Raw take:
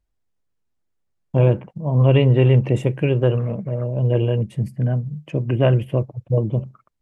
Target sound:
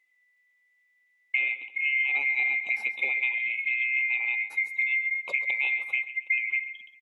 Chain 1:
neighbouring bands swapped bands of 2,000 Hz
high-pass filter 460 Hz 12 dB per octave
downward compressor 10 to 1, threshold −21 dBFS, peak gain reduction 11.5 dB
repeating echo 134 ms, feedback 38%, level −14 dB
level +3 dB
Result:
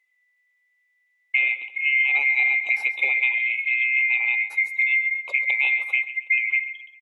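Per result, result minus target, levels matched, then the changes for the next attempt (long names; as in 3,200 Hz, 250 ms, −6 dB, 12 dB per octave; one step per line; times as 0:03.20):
250 Hz band −7.0 dB; downward compressor: peak gain reduction −6 dB
change: high-pass filter 220 Hz 12 dB per octave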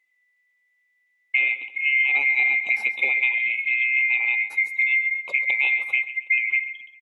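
downward compressor: peak gain reduction −6 dB
change: downward compressor 10 to 1, threshold −27.5 dBFS, peak gain reduction 17.5 dB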